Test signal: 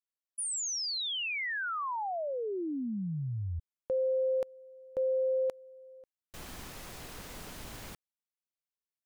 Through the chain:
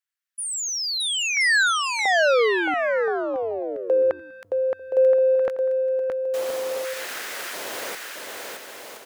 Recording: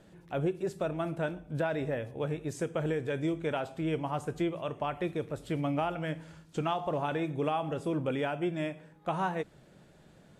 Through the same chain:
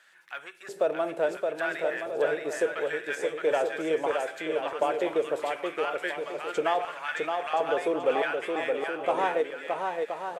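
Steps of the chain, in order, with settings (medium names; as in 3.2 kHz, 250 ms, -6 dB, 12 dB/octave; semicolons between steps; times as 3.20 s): recorder AGC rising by 6.7 dB/s; in parallel at -7 dB: saturation -32 dBFS; on the sum: LFO high-pass square 0.73 Hz 480–1600 Hz; bouncing-ball echo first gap 620 ms, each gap 0.65×, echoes 5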